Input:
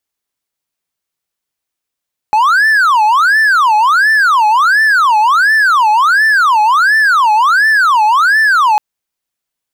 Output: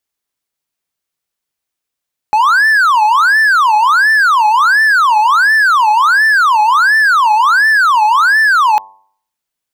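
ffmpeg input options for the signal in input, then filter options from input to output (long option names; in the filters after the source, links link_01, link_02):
-f lavfi -i "aevalsrc='0.596*(1-4*abs(mod((1307*t-463/(2*PI*1.4)*sin(2*PI*1.4*t))+0.25,1)-0.5))':duration=6.45:sample_rate=44100"
-af "bandreject=frequency=98.05:width_type=h:width=4,bandreject=frequency=196.1:width_type=h:width=4,bandreject=frequency=294.15:width_type=h:width=4,bandreject=frequency=392.2:width_type=h:width=4,bandreject=frequency=490.25:width_type=h:width=4,bandreject=frequency=588.3:width_type=h:width=4,bandreject=frequency=686.35:width_type=h:width=4,bandreject=frequency=784.4:width_type=h:width=4,bandreject=frequency=882.45:width_type=h:width=4,bandreject=frequency=980.5:width_type=h:width=4,bandreject=frequency=1078.55:width_type=h:width=4"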